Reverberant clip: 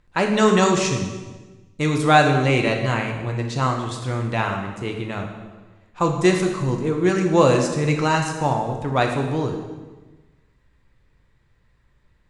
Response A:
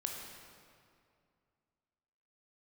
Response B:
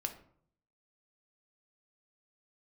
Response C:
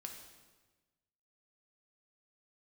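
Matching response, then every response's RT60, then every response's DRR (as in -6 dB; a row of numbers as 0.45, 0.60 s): C; 2.3, 0.60, 1.3 s; 1.0, 4.5, 2.0 dB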